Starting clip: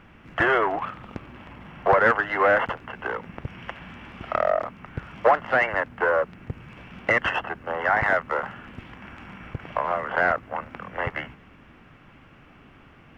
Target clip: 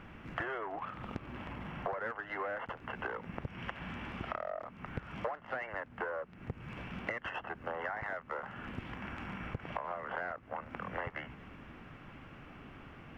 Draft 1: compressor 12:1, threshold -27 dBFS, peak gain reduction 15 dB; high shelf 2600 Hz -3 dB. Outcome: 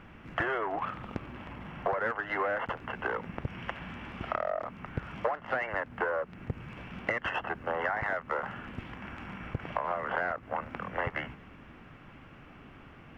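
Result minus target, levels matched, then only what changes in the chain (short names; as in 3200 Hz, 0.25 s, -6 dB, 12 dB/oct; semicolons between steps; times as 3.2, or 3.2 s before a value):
compressor: peak gain reduction -7.5 dB
change: compressor 12:1, threshold -35 dBFS, peak gain reduction 22.5 dB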